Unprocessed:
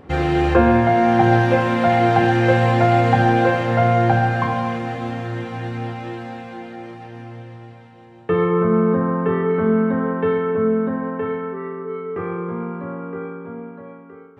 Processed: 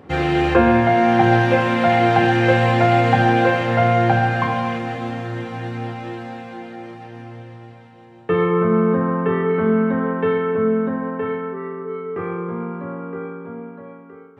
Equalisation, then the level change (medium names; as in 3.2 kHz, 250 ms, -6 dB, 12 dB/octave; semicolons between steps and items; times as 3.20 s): high-pass 85 Hz; dynamic bell 2.6 kHz, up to +4 dB, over -36 dBFS, Q 1.1; 0.0 dB